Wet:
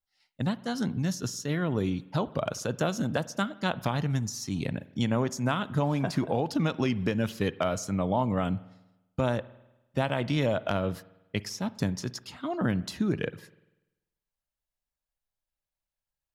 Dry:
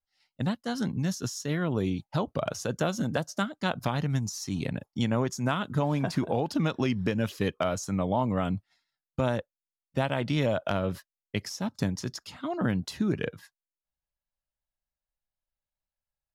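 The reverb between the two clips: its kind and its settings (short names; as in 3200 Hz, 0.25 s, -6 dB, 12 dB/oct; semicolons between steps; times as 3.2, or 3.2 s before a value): spring tank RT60 1 s, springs 49 ms, chirp 45 ms, DRR 18 dB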